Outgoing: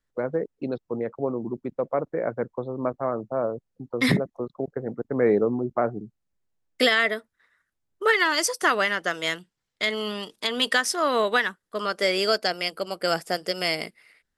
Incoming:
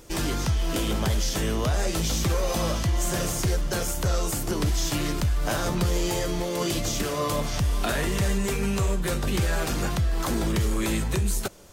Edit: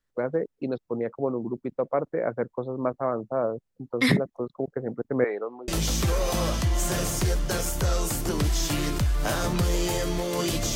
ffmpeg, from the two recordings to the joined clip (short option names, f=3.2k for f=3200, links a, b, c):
-filter_complex "[0:a]asettb=1/sr,asplit=3[a][b][c];[a]atrim=end=5.244[d];[b]atrim=start=5.24:end=5.68,asetpts=PTS-STARTPTS,afade=t=in:d=0.004:c=qsin,afade=t=out:st=0.436:d=0.004:c=qsin,highpass=750,lowpass=3.2k[e];[c]atrim=start=5.676[f];[d][e]acrossfade=d=0.004:c1=hsin:c2=qsin[g];[g][f]acrossfade=d=0.004:c1=qsin:c2=hsin,apad=whole_dur=10.75,atrim=end=10.75,atrim=end=5.682[h];[1:a]atrim=start=1.898:end=6.97[i];[h][i]acrossfade=d=0.004:c1=hsin:c2=hsin"